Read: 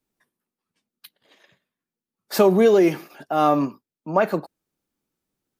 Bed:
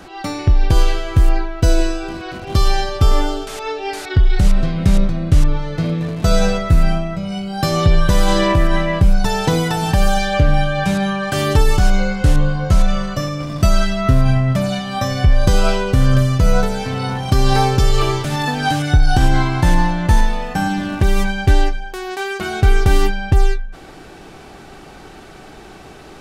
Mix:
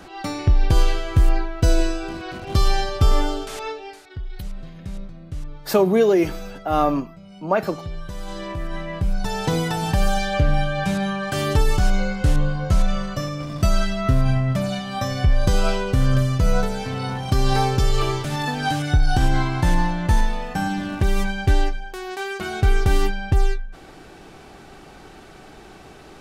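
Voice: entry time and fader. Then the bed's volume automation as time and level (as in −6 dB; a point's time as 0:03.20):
3.35 s, −1.0 dB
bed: 0:03.64 −3.5 dB
0:04.04 −19.5 dB
0:08.15 −19.5 dB
0:09.56 −5 dB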